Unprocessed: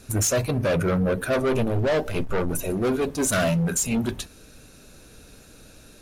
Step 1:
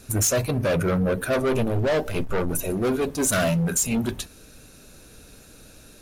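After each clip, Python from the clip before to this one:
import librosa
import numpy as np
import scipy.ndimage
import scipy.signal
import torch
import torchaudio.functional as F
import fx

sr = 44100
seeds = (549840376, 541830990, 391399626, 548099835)

y = fx.high_shelf(x, sr, hz=11000.0, db=6.0)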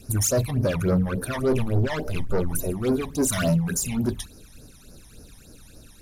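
y = fx.phaser_stages(x, sr, stages=12, low_hz=430.0, high_hz=3100.0, hz=3.5, feedback_pct=50)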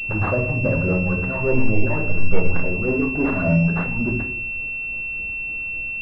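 y = fx.room_shoebox(x, sr, seeds[0], volume_m3=97.0, walls='mixed', distance_m=0.65)
y = fx.pwm(y, sr, carrier_hz=2700.0)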